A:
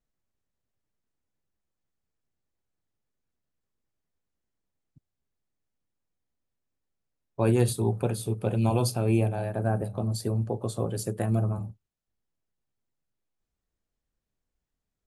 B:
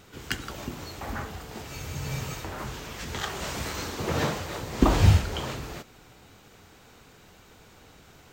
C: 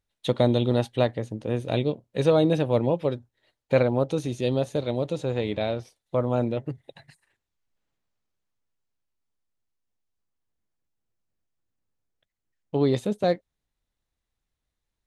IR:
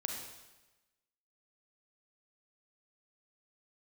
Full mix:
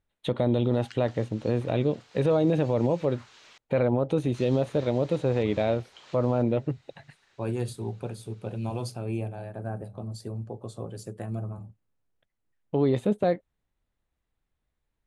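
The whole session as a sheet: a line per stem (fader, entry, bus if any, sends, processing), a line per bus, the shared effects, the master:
−7.5 dB, 0.00 s, no send, no processing
−9.5 dB, 0.60 s, muted 0:03.58–0:04.34, no send, parametric band 4,000 Hz +4 dB 0.24 octaves; downward compressor 3 to 1, threshold −33 dBFS, peak gain reduction 15.5 dB; resonant band-pass 3,400 Hz, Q 0.53
+3.0 dB, 0.00 s, no send, parametric band 5,500 Hz −14 dB 1.1 octaves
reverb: not used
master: low-pass filter 8,500 Hz 12 dB per octave; brickwall limiter −14.5 dBFS, peak gain reduction 9 dB

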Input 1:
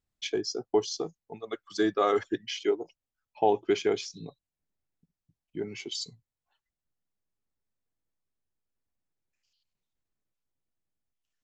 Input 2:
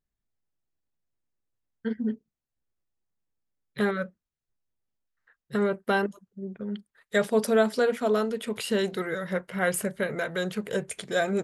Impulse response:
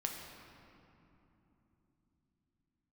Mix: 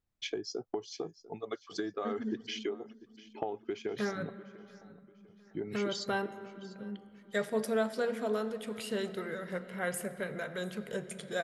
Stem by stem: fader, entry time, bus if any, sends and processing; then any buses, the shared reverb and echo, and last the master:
+0.5 dB, 0.00 s, no send, echo send −18.5 dB, high-shelf EQ 3,600 Hz −8 dB; downward compressor 16 to 1, threshold −33 dBFS, peak gain reduction 16 dB
−12.0 dB, 0.20 s, send −5 dB, echo send −20 dB, no processing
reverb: on, RT60 3.3 s, pre-delay 7 ms
echo: repeating echo 696 ms, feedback 37%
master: no processing

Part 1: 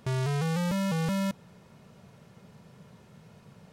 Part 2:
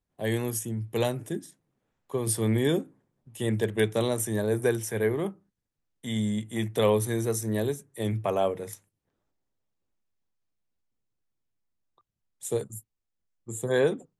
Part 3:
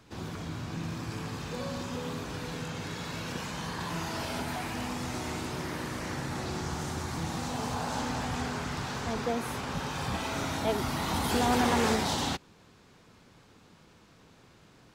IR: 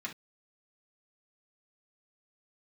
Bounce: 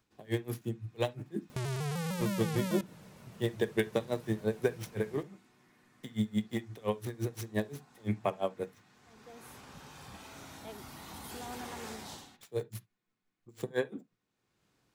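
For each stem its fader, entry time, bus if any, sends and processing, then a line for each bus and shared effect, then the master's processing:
0.0 dB, 1.50 s, bus A, send −20.5 dB, pitch modulation by a square or saw wave saw down 6.6 Hz, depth 160 cents
+1.5 dB, 0.00 s, no bus, send −10.5 dB, running median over 5 samples; downward compressor 4 to 1, threshold −26 dBFS, peak gain reduction 7.5 dB; tremolo with a sine in dB 5.8 Hz, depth 32 dB
−17.5 dB, 0.00 s, bus A, send −14 dB, automatic ducking −21 dB, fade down 0.25 s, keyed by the second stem
bus A: 0.0 dB, high-shelf EQ 8,400 Hz +11.5 dB; downward compressor, threshold −35 dBFS, peak gain reduction 7 dB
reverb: on, pre-delay 3 ms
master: no processing

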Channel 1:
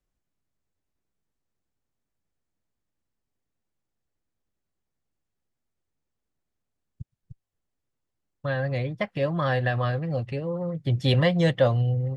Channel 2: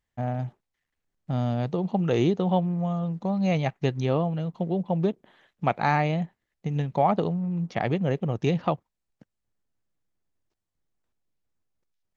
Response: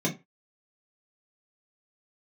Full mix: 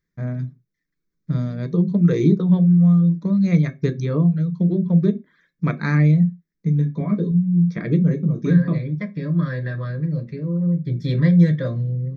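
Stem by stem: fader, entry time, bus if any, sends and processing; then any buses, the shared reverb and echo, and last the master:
−6.5 dB, 0.00 s, send −8.5 dB, no processing
+1.5 dB, 0.00 s, send −13.5 dB, reverb reduction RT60 0.66 s; automatic ducking −18 dB, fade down 0.50 s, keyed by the first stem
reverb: on, RT60 0.25 s, pre-delay 3 ms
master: phaser with its sweep stopped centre 2,900 Hz, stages 6

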